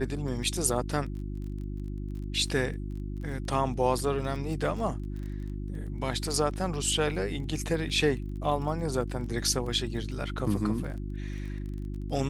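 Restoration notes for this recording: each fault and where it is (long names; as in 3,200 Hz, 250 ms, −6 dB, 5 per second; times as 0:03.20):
surface crackle 21 per second −38 dBFS
mains hum 50 Hz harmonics 7 −35 dBFS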